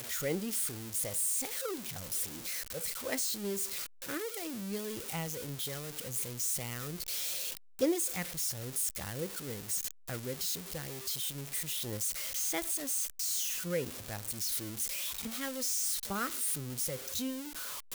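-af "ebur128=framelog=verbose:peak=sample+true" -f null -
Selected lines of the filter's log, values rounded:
Integrated loudness:
  I:         -34.0 LUFS
  Threshold: -44.0 LUFS
Loudness range:
  LRA:         2.9 LU
  Threshold: -54.1 LUFS
  LRA low:   -35.8 LUFS
  LRA high:  -32.9 LUFS
Sample peak:
  Peak:      -18.9 dBFS
True peak:
  Peak:      -18.9 dBFS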